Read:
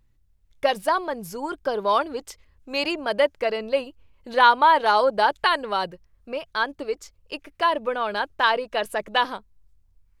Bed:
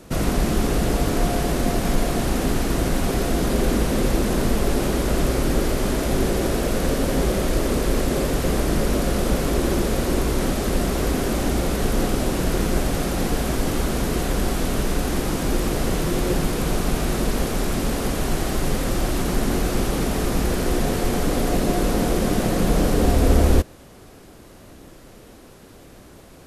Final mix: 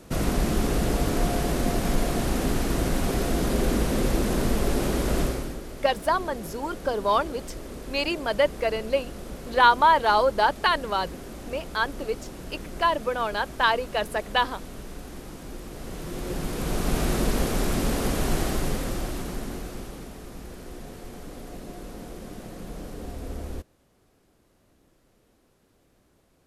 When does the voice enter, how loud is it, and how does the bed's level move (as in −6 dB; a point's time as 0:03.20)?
5.20 s, −1.5 dB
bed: 0:05.22 −3.5 dB
0:05.61 −17 dB
0:15.68 −17 dB
0:16.99 −2 dB
0:18.41 −2 dB
0:20.20 −19 dB